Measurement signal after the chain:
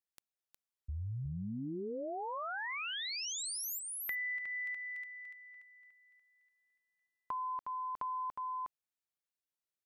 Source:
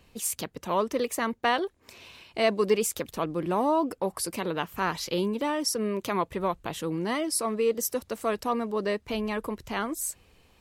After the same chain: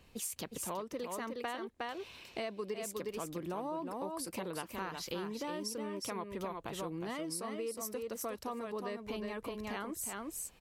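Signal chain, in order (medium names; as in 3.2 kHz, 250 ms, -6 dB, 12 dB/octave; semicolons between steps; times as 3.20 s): delay 362 ms -5.5 dB; compression 6:1, threshold -34 dBFS; trim -3 dB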